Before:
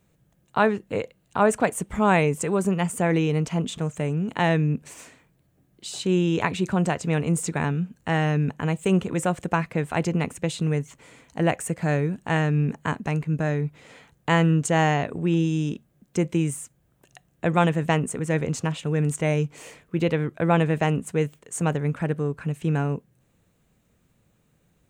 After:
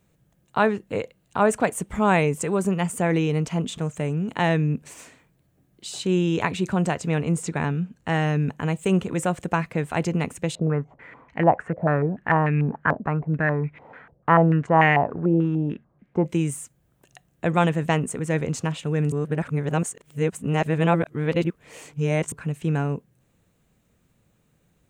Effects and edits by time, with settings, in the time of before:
7.11–8.08 s: treble shelf 9.7 kHz -11 dB
10.55–16.26 s: step-sequenced low-pass 6.8 Hz 610–2200 Hz
19.12–22.32 s: reverse

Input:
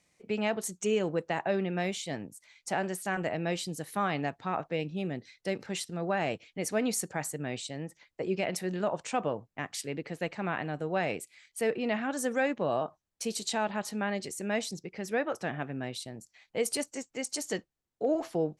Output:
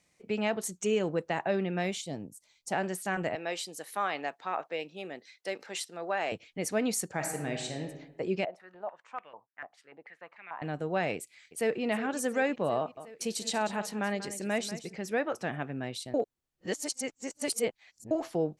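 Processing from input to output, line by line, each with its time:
2.01–2.72 s: peaking EQ 1.8 kHz -13.5 dB 1.6 oct
3.35–6.32 s: high-pass 460 Hz
7.09–7.82 s: reverb throw, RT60 1.1 s, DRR 3 dB
8.45–10.62 s: step-sequenced band-pass 6.8 Hz 670–2200 Hz
11.15–11.83 s: echo throw 360 ms, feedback 75%, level -13.5 dB
12.78–14.96 s: delay 190 ms -13 dB
16.14–18.11 s: reverse

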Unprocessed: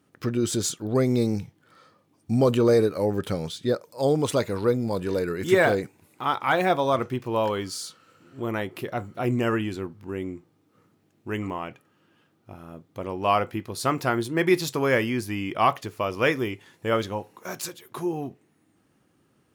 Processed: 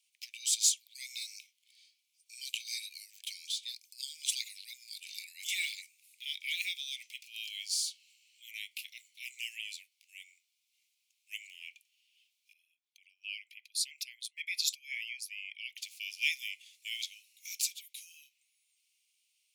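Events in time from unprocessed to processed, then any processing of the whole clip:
12.53–15.78 s: resonances exaggerated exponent 1.5
whole clip: steep high-pass 2.2 kHz 96 dB/octave; peaking EQ 6.3 kHz +5.5 dB 2.6 oct; trim -3 dB

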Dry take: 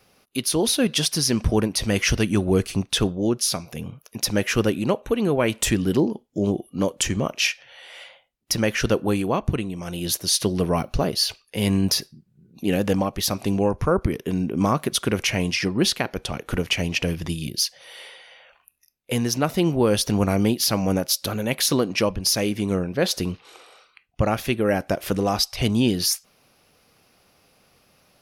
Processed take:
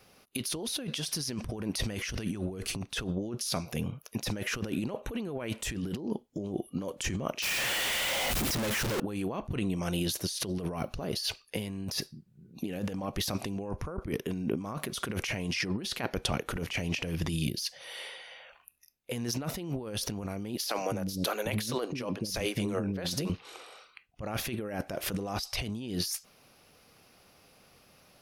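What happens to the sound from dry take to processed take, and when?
7.42–9.00 s: one-bit comparator
20.57–23.30 s: bands offset in time highs, lows 210 ms, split 360 Hz
whole clip: compressor with a negative ratio -28 dBFS, ratio -1; trim -5.5 dB

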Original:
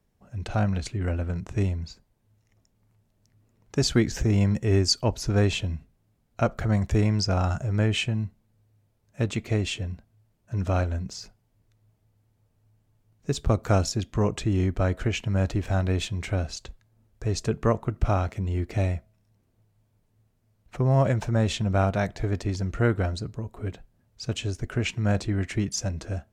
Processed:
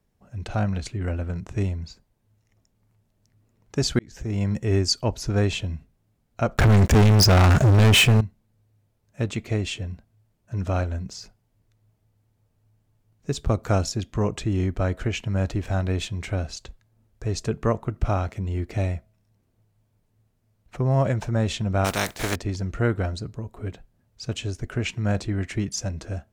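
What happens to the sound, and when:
3.99–4.59 s: fade in
6.57–8.21 s: waveshaping leveller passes 5
21.84–22.34 s: spectral contrast reduction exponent 0.42

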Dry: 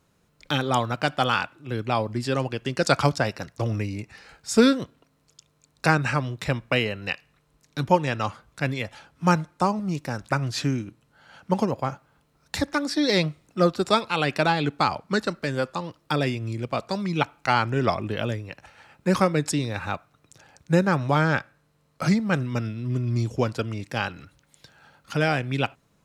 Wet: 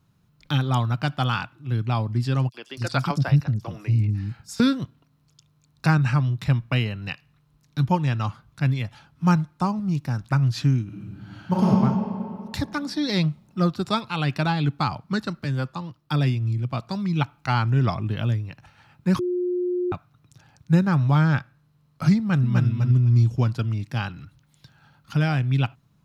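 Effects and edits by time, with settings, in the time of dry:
2.49–4.60 s: three bands offset in time highs, mids, lows 50/280 ms, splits 330/5000 Hz
10.84–11.65 s: reverb throw, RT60 2.5 s, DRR -6.5 dB
15.44–16.69 s: three bands expanded up and down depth 40%
19.19–19.92 s: bleep 358 Hz -17 dBFS
22.18–22.66 s: echo throw 250 ms, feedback 15%, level -4 dB
whole clip: graphic EQ 125/500/2000/8000 Hz +9/-10/-5/-8 dB

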